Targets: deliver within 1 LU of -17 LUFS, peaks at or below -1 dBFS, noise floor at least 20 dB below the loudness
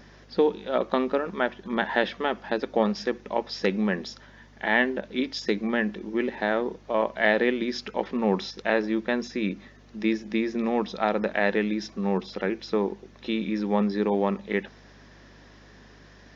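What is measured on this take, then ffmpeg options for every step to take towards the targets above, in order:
hum 50 Hz; highest harmonic 150 Hz; hum level -52 dBFS; loudness -27.0 LUFS; peak level -6.0 dBFS; loudness target -17.0 LUFS
-> -af "bandreject=f=50:t=h:w=4,bandreject=f=100:t=h:w=4,bandreject=f=150:t=h:w=4"
-af "volume=3.16,alimiter=limit=0.891:level=0:latency=1"

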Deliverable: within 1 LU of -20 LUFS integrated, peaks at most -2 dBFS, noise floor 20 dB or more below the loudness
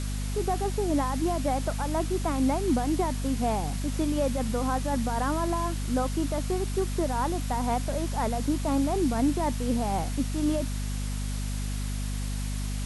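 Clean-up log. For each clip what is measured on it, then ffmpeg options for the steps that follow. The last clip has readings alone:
hum 50 Hz; highest harmonic 250 Hz; hum level -28 dBFS; noise floor -31 dBFS; noise floor target -49 dBFS; loudness -28.5 LUFS; peak level -15.0 dBFS; loudness target -20.0 LUFS
-> -af "bandreject=f=50:t=h:w=4,bandreject=f=100:t=h:w=4,bandreject=f=150:t=h:w=4,bandreject=f=200:t=h:w=4,bandreject=f=250:t=h:w=4"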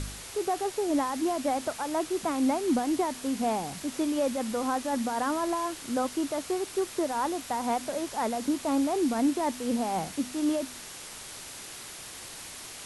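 hum not found; noise floor -43 dBFS; noise floor target -50 dBFS
-> -af "afftdn=nr=7:nf=-43"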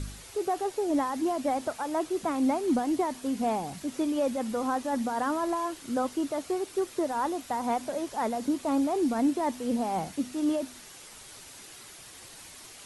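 noise floor -48 dBFS; noise floor target -50 dBFS
-> -af "afftdn=nr=6:nf=-48"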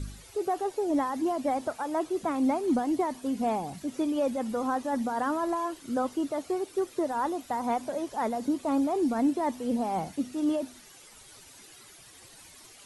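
noise floor -52 dBFS; loudness -29.5 LUFS; peak level -17.0 dBFS; loudness target -20.0 LUFS
-> -af "volume=2.99"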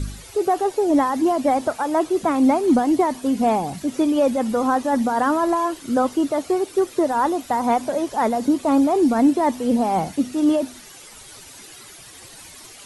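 loudness -20.0 LUFS; peak level -7.5 dBFS; noise floor -43 dBFS

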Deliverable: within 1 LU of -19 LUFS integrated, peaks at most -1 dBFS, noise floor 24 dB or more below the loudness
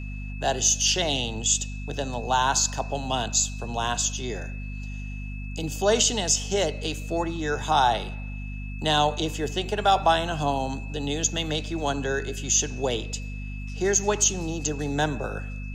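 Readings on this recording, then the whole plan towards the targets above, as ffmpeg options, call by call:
hum 50 Hz; highest harmonic 250 Hz; hum level -31 dBFS; steady tone 2.6 kHz; tone level -43 dBFS; loudness -25.0 LUFS; peak level -8.5 dBFS; loudness target -19.0 LUFS
-> -af "bandreject=f=50:t=h:w=4,bandreject=f=100:t=h:w=4,bandreject=f=150:t=h:w=4,bandreject=f=200:t=h:w=4,bandreject=f=250:t=h:w=4"
-af "bandreject=f=2600:w=30"
-af "volume=2"

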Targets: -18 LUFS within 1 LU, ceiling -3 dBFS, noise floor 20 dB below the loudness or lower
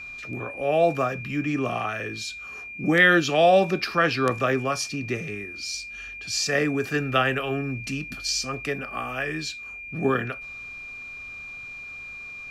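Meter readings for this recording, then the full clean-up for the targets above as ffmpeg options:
steady tone 2.4 kHz; tone level -36 dBFS; loudness -24.5 LUFS; peak level -5.5 dBFS; loudness target -18.0 LUFS
-> -af "bandreject=f=2400:w=30"
-af "volume=2.11,alimiter=limit=0.708:level=0:latency=1"

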